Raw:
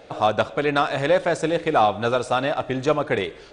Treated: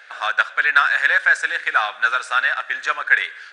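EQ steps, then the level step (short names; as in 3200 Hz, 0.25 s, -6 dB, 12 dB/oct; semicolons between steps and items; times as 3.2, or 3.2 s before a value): resonant high-pass 1600 Hz, resonance Q 7.1; +1.0 dB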